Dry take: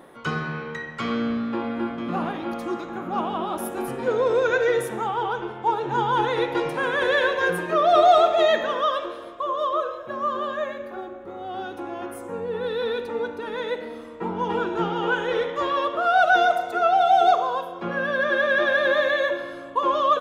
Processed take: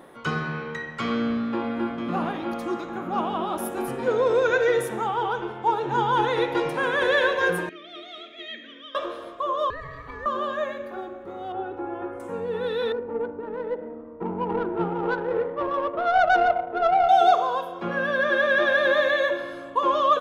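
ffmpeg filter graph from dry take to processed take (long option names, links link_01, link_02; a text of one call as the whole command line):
ffmpeg -i in.wav -filter_complex "[0:a]asettb=1/sr,asplit=3[link_01][link_02][link_03];[link_01]atrim=end=7.694[link_04];[link_02]atrim=start=7.69:end=8.95,asetpts=PTS-STARTPTS,afade=type=in:duration=0.004:curve=qsin,afade=type=out:start_time=1.256:duration=0.004:curve=qsin,asplit=3[link_05][link_06][link_07];[link_05]bandpass=frequency=270:width_type=q:width=8,volume=0dB[link_08];[link_06]bandpass=frequency=2290:width_type=q:width=8,volume=-6dB[link_09];[link_07]bandpass=frequency=3010:width_type=q:width=8,volume=-9dB[link_10];[link_08][link_09][link_10]amix=inputs=3:normalize=0,tiltshelf=frequency=890:gain=-4[link_11];[link_03]atrim=start=8.946[link_12];[link_04][link_11]acrossfade=duration=0.004:curve1=hsin:curve2=qsin[link_13];[link_13][link_12]acrossfade=duration=0.004:curve1=qsin:curve2=hsin,asettb=1/sr,asplit=3[link_14][link_15][link_16];[link_14]atrim=end=9.704[link_17];[link_15]atrim=start=9.7:end=10.26,asetpts=PTS-STARTPTS,afade=type=in:duration=0.004:curve=qsin,afade=type=out:start_time=0.556:duration=0.004:curve=qsin,aeval=exprs='val(0)*sin(2*PI*630*n/s)':channel_layout=same,acompressor=threshold=-33dB:ratio=4:attack=3.2:release=140:knee=1:detection=peak[link_18];[link_16]atrim=start=10.256[link_19];[link_17][link_18]acrossfade=duration=0.004:curve1=hsin:curve2=qsin[link_20];[link_20][link_19]acrossfade=duration=0.004:curve1=qsin:curve2=hsin,asettb=1/sr,asplit=3[link_21][link_22][link_23];[link_21]atrim=end=11.524[link_24];[link_22]atrim=start=11.52:end=12.2,asetpts=PTS-STARTPTS,afade=type=in:duration=0.004:curve=qsin,afade=type=out:start_time=0.676:duration=0.004:curve=qsin,lowpass=1500,aecho=1:1:2.3:0.56,atrim=end_sample=29988[link_25];[link_23]atrim=start=12.196[link_26];[link_24][link_25]acrossfade=duration=0.004:curve1=hsin:curve2=qsin[link_27];[link_27][link_26]acrossfade=duration=0.004:curve1=qsin:curve2=hsin,asettb=1/sr,asplit=3[link_28][link_29][link_30];[link_28]atrim=end=12.924[link_31];[link_29]atrim=start=12.92:end=17.09,asetpts=PTS-STARTPTS,afade=type=in:duration=0.004:curve=qsin,afade=type=out:start_time=4.166:duration=0.004:curve=qsin,lowpass=1800,adynamicsmooth=sensitivity=0.5:basefreq=930[link_32];[link_30]atrim=start=17.086[link_33];[link_31][link_32]acrossfade=duration=0.004:curve1=hsin:curve2=qsin[link_34];[link_34][link_33]acrossfade=duration=0.004:curve1=qsin:curve2=hsin" out.wav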